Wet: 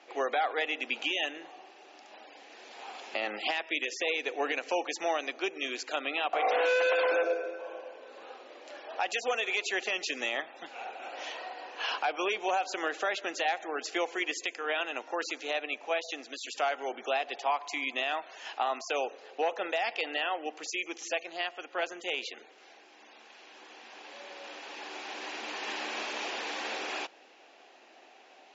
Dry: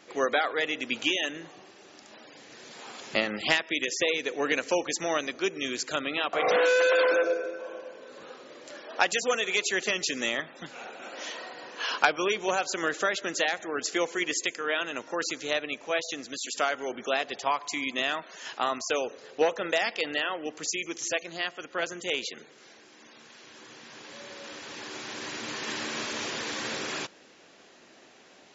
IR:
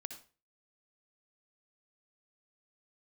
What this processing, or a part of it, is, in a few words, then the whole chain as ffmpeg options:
laptop speaker: -af "highpass=frequency=280:width=0.5412,highpass=frequency=280:width=1.3066,lowpass=5600,equalizer=frequency=770:width_type=o:width=0.48:gain=10.5,equalizer=frequency=2600:width_type=o:width=0.49:gain=5.5,alimiter=limit=-15dB:level=0:latency=1:release=66,volume=-4.5dB"

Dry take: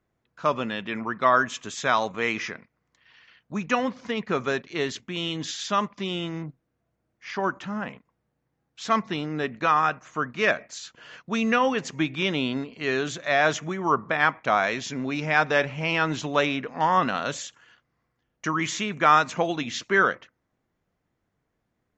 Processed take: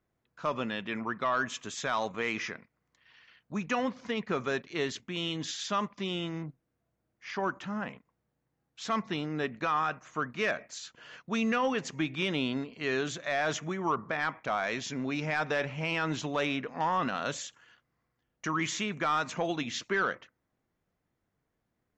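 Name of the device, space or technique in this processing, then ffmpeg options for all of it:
soft clipper into limiter: -af "asoftclip=type=tanh:threshold=-10.5dB,alimiter=limit=-16.5dB:level=0:latency=1:release=45,volume=-4dB"

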